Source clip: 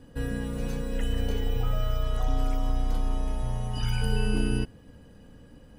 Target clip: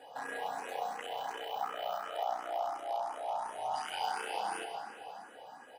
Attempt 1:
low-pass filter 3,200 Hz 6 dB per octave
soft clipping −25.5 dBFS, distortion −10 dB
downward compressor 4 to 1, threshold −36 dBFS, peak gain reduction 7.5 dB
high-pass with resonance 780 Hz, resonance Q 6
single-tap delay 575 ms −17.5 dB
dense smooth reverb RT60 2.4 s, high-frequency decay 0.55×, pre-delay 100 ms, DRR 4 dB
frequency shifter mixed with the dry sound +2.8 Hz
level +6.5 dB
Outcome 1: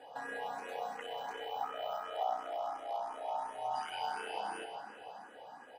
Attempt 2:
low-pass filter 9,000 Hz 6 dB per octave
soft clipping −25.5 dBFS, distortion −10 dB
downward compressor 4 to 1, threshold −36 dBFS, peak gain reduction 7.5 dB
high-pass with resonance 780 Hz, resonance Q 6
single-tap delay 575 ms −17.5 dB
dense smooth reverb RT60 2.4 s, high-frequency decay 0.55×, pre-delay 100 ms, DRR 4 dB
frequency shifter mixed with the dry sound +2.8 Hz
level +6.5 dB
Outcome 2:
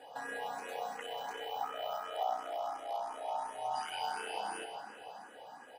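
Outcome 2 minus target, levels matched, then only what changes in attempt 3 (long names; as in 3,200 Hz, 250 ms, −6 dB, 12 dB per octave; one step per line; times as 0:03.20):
soft clipping: distortion −4 dB
change: soft clipping −32 dBFS, distortion −6 dB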